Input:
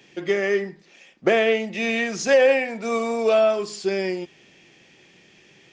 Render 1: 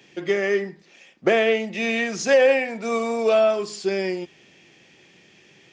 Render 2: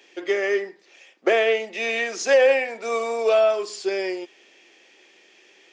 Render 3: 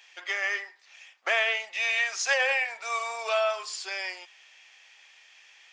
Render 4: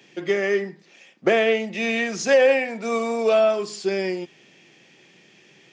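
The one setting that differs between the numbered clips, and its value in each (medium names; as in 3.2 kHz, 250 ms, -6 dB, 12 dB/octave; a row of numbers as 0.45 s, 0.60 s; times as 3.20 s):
high-pass, cutoff frequency: 46 Hz, 330 Hz, 840 Hz, 120 Hz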